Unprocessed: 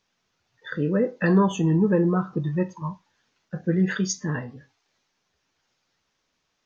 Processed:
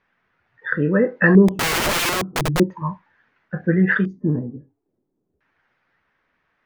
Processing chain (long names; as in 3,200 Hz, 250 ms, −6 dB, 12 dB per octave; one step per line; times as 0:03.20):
auto-filter low-pass square 0.37 Hz 340–1,800 Hz
0:01.48–0:02.60: wrap-around overflow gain 20.5 dB
level +4.5 dB